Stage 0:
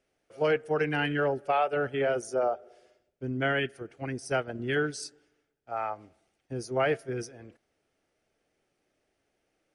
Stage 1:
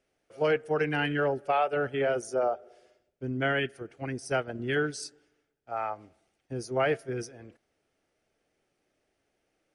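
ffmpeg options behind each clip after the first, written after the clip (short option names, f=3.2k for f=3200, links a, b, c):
-af anull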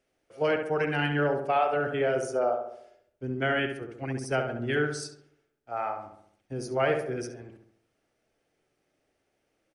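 -filter_complex "[0:a]asplit=2[a][b];[b]adelay=68,lowpass=f=2k:p=1,volume=-5dB,asplit=2[c][d];[d]adelay=68,lowpass=f=2k:p=1,volume=0.52,asplit=2[e][f];[f]adelay=68,lowpass=f=2k:p=1,volume=0.52,asplit=2[g][h];[h]adelay=68,lowpass=f=2k:p=1,volume=0.52,asplit=2[i][j];[j]adelay=68,lowpass=f=2k:p=1,volume=0.52,asplit=2[k][l];[l]adelay=68,lowpass=f=2k:p=1,volume=0.52,asplit=2[m][n];[n]adelay=68,lowpass=f=2k:p=1,volume=0.52[o];[a][c][e][g][i][k][m][o]amix=inputs=8:normalize=0"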